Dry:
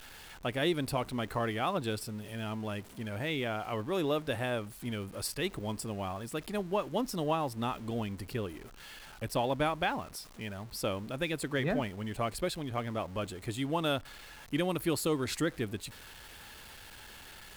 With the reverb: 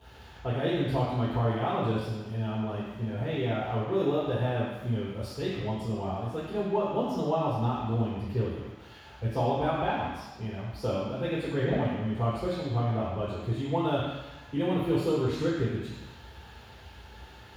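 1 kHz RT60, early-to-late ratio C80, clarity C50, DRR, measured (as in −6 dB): 1.2 s, 2.5 dB, 0.5 dB, −8.0 dB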